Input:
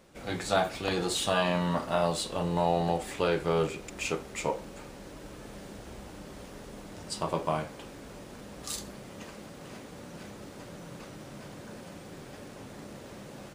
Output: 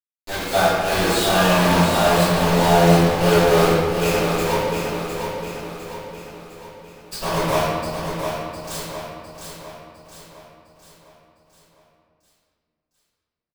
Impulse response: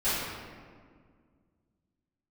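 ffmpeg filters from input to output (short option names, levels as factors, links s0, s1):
-filter_complex "[0:a]bandreject=f=50:t=h:w=6,bandreject=f=100:t=h:w=6,bandreject=f=150:t=h:w=6,bandreject=f=200:t=h:w=6,bandreject=f=250:t=h:w=6,bandreject=f=300:t=h:w=6,bandreject=f=350:t=h:w=6,bandreject=f=400:t=h:w=6,bandreject=f=450:t=h:w=6,acrusher=bits=4:mix=0:aa=0.000001,aecho=1:1:706|1412|2118|2824|3530|4236:0.473|0.227|0.109|0.0523|0.0251|0.0121[s0];[1:a]atrim=start_sample=2205[s1];[s0][s1]afir=irnorm=-1:irlink=0,volume=0.794"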